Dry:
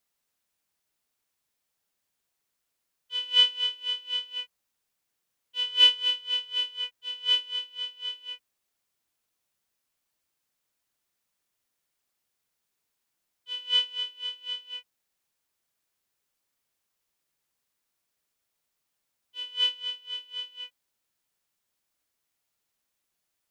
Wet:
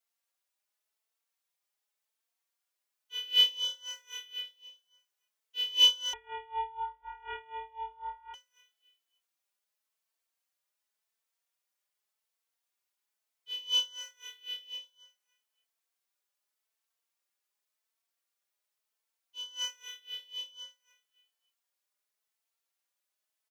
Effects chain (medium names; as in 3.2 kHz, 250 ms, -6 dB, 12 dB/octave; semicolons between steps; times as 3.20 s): partial rectifier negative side -7 dB; high-pass 480 Hz 12 dB/octave; feedback delay 282 ms, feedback 24%, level -14 dB; 6.13–8.34 s: frequency inversion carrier 3.9 kHz; endless flanger 4 ms +0.89 Hz